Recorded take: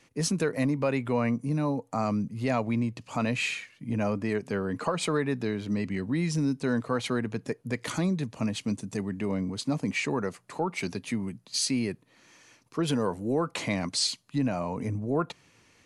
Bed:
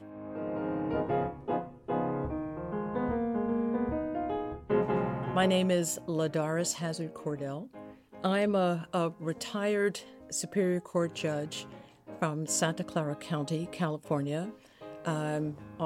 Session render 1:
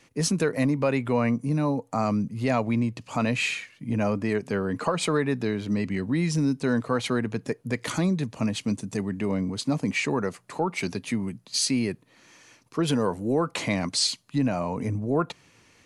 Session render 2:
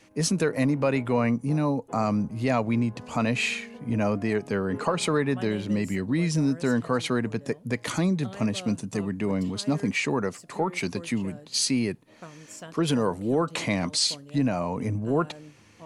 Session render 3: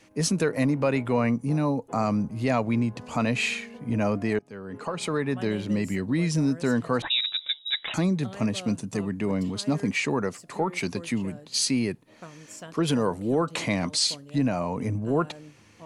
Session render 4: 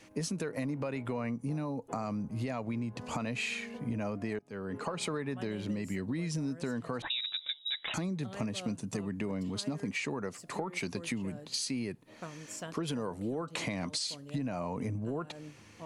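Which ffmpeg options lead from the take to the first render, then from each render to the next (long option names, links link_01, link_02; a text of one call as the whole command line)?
ffmpeg -i in.wav -af "volume=3dB" out.wav
ffmpeg -i in.wav -i bed.wav -filter_complex "[1:a]volume=-13.5dB[link_01];[0:a][link_01]amix=inputs=2:normalize=0" out.wav
ffmpeg -i in.wav -filter_complex "[0:a]asettb=1/sr,asplit=3[link_01][link_02][link_03];[link_01]atrim=end=7.024[link_04];[link_02]atrim=start=7.02:end=7.94,asetpts=PTS-STARTPTS,afade=type=in:duration=0.004:curve=qsin,afade=type=out:start_time=0.916:duration=0.004:curve=qsin,lowpass=frequency=3400:width_type=q:width=0.5098,lowpass=frequency=3400:width_type=q:width=0.6013,lowpass=frequency=3400:width_type=q:width=0.9,lowpass=frequency=3400:width_type=q:width=2.563,afreqshift=-4000[link_05];[link_03]atrim=start=7.936[link_06];[link_04][link_05]acrossfade=duration=0.004:curve1=hsin:curve2=qsin[link_07];[link_07][link_06]acrossfade=duration=0.004:curve1=qsin:curve2=hsin,asplit=2[link_08][link_09];[link_08]atrim=end=4.39,asetpts=PTS-STARTPTS,afade=type=out:start_time=4.386:duration=0.004:curve=hsin:silence=0.0841395[link_10];[link_09]atrim=start=4.39,asetpts=PTS-STARTPTS,afade=type=in:duration=1.14:silence=0.0841395[link_11];[link_10][link_11]concat=n=2:v=0:a=1" out.wav
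ffmpeg -i in.wav -af "alimiter=limit=-18dB:level=0:latency=1:release=269,acompressor=threshold=-32dB:ratio=6" out.wav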